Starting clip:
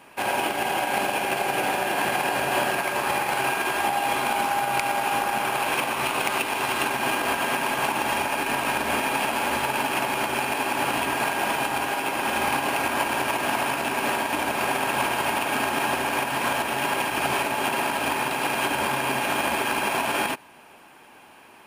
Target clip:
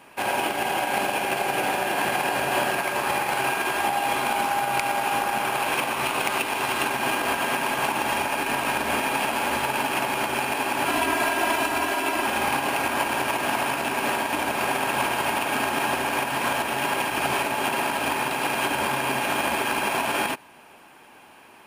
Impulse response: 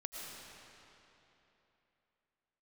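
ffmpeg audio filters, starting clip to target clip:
-filter_complex "[0:a]asettb=1/sr,asplit=3[link_01][link_02][link_03];[link_01]atrim=end=10.864[link_04];[link_02]atrim=start=10.86:end=12.26,asetpts=PTS-STARTPTS,afade=type=in:duration=0.004:curve=qsin,afade=type=out:start_time=1.396:duration=0.004:curve=qsin,aecho=1:1:3:0.69,atrim=end_sample=61740[link_05];[link_03]atrim=start=12.256[link_06];[link_04][link_05]acrossfade=duration=0.004:curve1=hsin:curve2=qsin[link_07];[link_07][link_06]acrossfade=duration=0.004:curve1=qsin:curve2=hsin"

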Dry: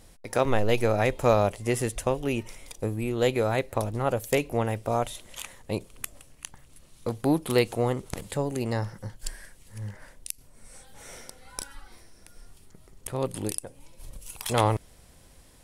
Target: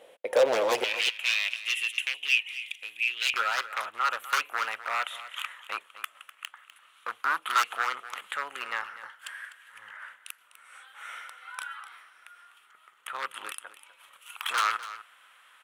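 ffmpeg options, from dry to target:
ffmpeg -i in.wav -af "highshelf=frequency=3900:width_type=q:width=3:gain=-8,aeval=exprs='0.0841*(abs(mod(val(0)/0.0841+3,4)-2)-1)':channel_layout=same,asetnsamples=nb_out_samples=441:pad=0,asendcmd='0.84 highpass f 2600;3.34 highpass f 1300',highpass=frequency=520:width_type=q:width=4.9,aecho=1:1:250:0.188" out.wav

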